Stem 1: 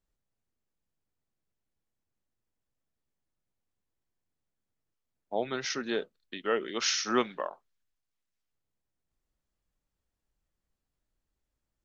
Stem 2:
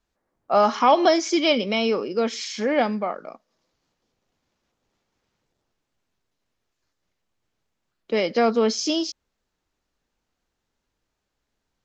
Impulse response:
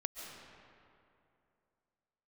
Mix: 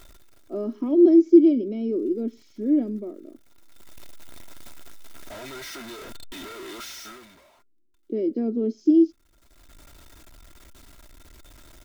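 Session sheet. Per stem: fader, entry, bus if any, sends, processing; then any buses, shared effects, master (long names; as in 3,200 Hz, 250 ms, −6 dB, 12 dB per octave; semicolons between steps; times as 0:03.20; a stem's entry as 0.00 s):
0:01.80 −9.5 dB → 0:02.05 −0.5 dB → 0:07.09 −0.5 dB → 0:07.51 −10.5 dB, 0.00 s, no send, sign of each sample alone; hollow resonant body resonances 1,400/2,100/3,600 Hz, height 12 dB, ringing for 70 ms; automatic ducking −19 dB, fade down 1.25 s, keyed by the second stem
−6.0 dB, 0.00 s, no send, drawn EQ curve 170 Hz 0 dB, 340 Hz +13 dB, 800 Hz −24 dB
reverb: not used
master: comb filter 3.1 ms, depth 49%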